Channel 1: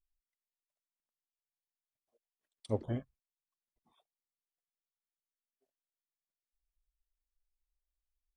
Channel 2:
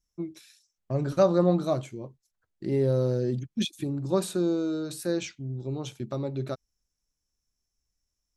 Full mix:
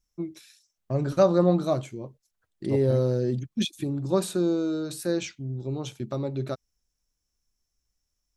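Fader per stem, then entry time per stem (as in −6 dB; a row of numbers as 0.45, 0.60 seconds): +0.5, +1.5 decibels; 0.00, 0.00 seconds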